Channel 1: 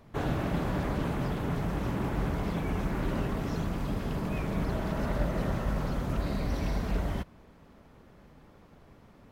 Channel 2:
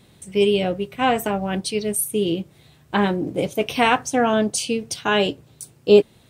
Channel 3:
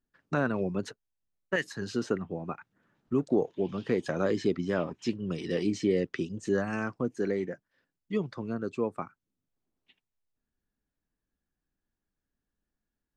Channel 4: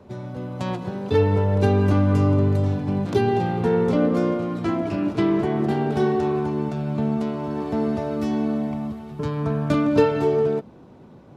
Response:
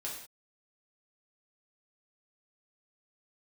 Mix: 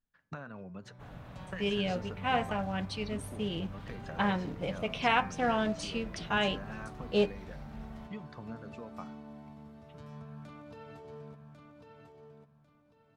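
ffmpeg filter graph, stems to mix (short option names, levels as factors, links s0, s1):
-filter_complex "[0:a]bass=f=250:g=0,treble=f=4000:g=-4,adelay=850,volume=0.15[s0];[1:a]acrusher=bits=6:mode=log:mix=0:aa=0.000001,lowpass=3600,adelay=1250,volume=0.422[s1];[2:a]highshelf=f=5900:g=-9.5,acompressor=threshold=0.02:ratio=16,volume=0.794[s2];[3:a]alimiter=limit=0.15:level=0:latency=1:release=57,adelay=750,volume=0.1,asplit=2[s3][s4];[s4]volume=0.501,aecho=0:1:1097|2194|3291|4388:1|0.25|0.0625|0.0156[s5];[s0][s1][s2][s3][s5]amix=inputs=5:normalize=0,equalizer=f=350:t=o:w=0.86:g=-11.5,bandreject=f=130.4:t=h:w=4,bandreject=f=260.8:t=h:w=4,bandreject=f=391.2:t=h:w=4,bandreject=f=521.6:t=h:w=4,bandreject=f=652:t=h:w=4,bandreject=f=782.4:t=h:w=4,bandreject=f=912.8:t=h:w=4,bandreject=f=1043.2:t=h:w=4,bandreject=f=1173.6:t=h:w=4,bandreject=f=1304:t=h:w=4,bandreject=f=1434.4:t=h:w=4,bandreject=f=1564.8:t=h:w=4,bandreject=f=1695.2:t=h:w=4,bandreject=f=1825.6:t=h:w=4,bandreject=f=1956:t=h:w=4,bandreject=f=2086.4:t=h:w=4,bandreject=f=2216.8:t=h:w=4,bandreject=f=2347.2:t=h:w=4,bandreject=f=2477.6:t=h:w=4"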